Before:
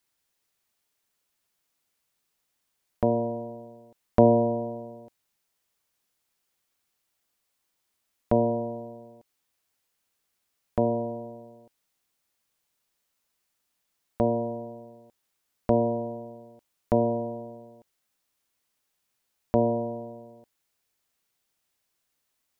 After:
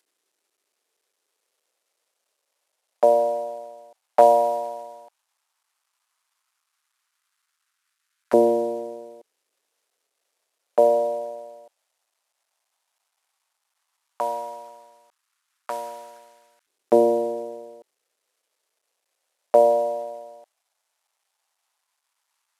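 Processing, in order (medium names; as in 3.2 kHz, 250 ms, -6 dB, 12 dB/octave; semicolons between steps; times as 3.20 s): CVSD coder 64 kbps; LFO high-pass saw up 0.12 Hz 350–1500 Hz; trim +3.5 dB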